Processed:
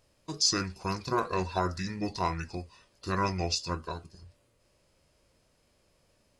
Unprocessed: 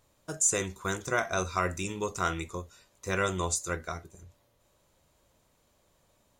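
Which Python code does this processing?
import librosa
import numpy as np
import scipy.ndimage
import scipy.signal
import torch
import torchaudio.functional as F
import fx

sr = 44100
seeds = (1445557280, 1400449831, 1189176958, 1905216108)

y = fx.formant_shift(x, sr, semitones=-6)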